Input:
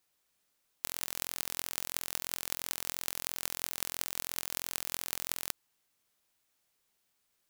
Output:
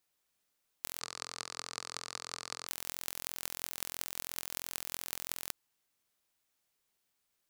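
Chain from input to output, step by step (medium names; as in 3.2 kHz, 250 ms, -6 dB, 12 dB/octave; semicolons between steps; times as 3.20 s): 1.00–2.67 s: cabinet simulation 110–8200 Hz, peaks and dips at 120 Hz +3 dB, 280 Hz -9 dB, 450 Hz +5 dB, 1.2 kHz +9 dB, 3.1 kHz -5 dB, 4.5 kHz +7 dB; trim -3.5 dB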